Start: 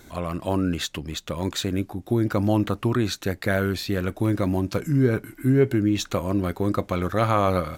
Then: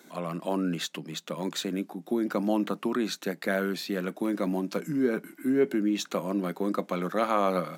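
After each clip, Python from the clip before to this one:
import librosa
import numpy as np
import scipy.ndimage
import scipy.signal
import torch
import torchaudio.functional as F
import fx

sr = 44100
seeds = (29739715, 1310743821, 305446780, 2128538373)

y = scipy.signal.sosfilt(scipy.signal.cheby1(6, 1.0, 160.0, 'highpass', fs=sr, output='sos'), x)
y = y * librosa.db_to_amplitude(-3.5)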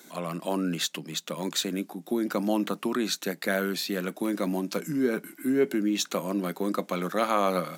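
y = fx.high_shelf(x, sr, hz=3200.0, db=8.0)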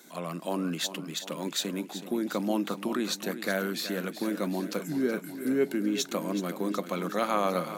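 y = fx.echo_feedback(x, sr, ms=375, feedback_pct=59, wet_db=-12)
y = y * librosa.db_to_amplitude(-2.5)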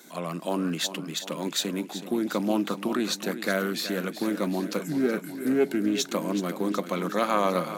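y = fx.doppler_dist(x, sr, depth_ms=0.13)
y = y * librosa.db_to_amplitude(3.0)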